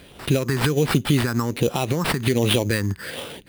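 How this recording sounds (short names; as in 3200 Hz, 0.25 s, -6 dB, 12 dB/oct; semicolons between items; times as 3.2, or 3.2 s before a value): phasing stages 4, 1.3 Hz, lowest notch 530–1700 Hz; aliases and images of a low sample rate 6500 Hz, jitter 0%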